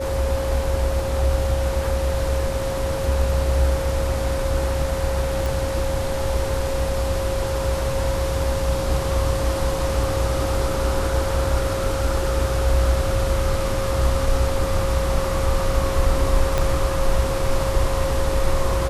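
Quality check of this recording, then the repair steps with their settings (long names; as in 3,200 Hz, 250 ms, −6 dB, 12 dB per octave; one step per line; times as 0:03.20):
whistle 540 Hz −25 dBFS
0:05.46: click
0:16.58: click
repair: click removal
notch filter 540 Hz, Q 30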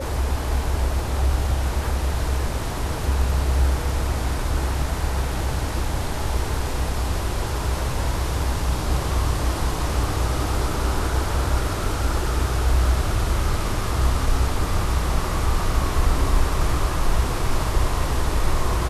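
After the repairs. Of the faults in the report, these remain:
0:16.58: click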